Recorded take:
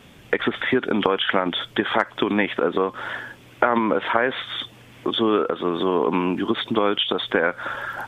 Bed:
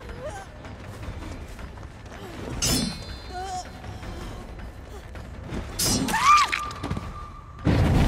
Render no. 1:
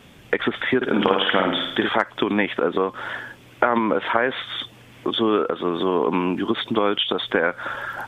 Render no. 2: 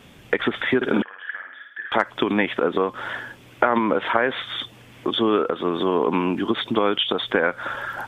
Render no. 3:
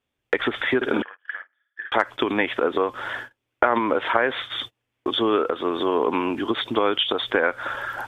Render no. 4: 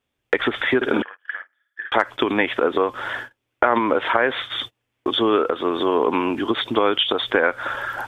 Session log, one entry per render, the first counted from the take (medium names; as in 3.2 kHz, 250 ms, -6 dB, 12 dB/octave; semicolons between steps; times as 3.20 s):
0.76–1.89 s: flutter echo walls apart 9.1 m, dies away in 0.72 s
1.02–1.92 s: band-pass filter 1.7 kHz, Q 15
gate -33 dBFS, range -31 dB; peaking EQ 180 Hz -11 dB 0.64 oct
trim +2.5 dB; peak limiter -2 dBFS, peak gain reduction 2.5 dB